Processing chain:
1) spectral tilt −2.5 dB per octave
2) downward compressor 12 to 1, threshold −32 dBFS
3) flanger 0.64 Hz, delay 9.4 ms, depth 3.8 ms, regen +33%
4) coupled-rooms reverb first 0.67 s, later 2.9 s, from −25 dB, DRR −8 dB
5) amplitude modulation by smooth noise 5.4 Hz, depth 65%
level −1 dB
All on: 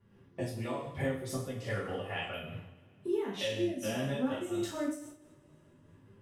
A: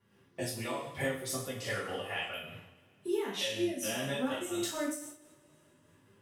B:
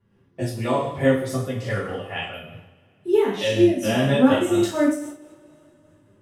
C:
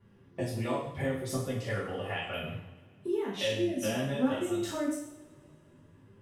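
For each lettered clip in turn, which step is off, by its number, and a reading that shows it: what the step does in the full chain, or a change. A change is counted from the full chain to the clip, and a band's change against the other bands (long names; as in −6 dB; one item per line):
1, 8 kHz band +7.5 dB
2, average gain reduction 10.5 dB
5, change in crest factor +2.0 dB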